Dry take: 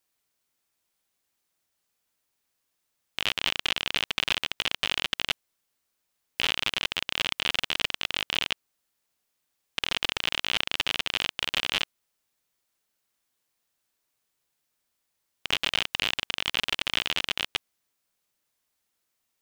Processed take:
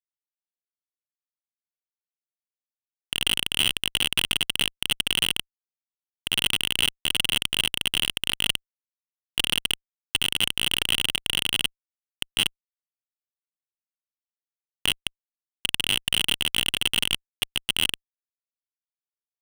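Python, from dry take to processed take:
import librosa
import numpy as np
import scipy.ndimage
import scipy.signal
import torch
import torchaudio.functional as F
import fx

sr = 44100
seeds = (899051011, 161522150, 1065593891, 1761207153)

y = fx.block_reorder(x, sr, ms=130.0, group=6)
y = fx.fuzz(y, sr, gain_db=39.0, gate_db=-45.0)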